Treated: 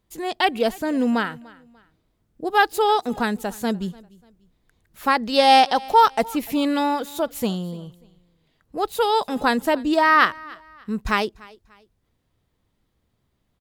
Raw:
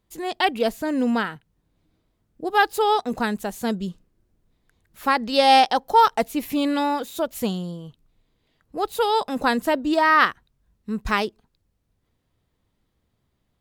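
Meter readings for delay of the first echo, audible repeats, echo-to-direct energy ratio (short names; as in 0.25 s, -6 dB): 0.294 s, 2, -22.5 dB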